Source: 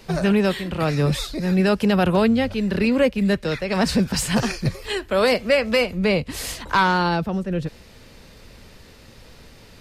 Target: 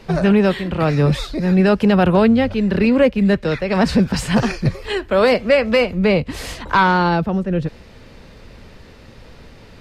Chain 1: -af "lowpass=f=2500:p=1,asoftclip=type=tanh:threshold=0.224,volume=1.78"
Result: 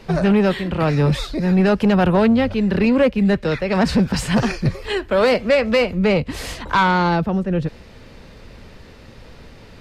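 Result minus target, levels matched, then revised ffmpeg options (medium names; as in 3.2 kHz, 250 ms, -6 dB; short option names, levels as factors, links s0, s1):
saturation: distortion +15 dB
-af "lowpass=f=2500:p=1,asoftclip=type=tanh:threshold=0.631,volume=1.78"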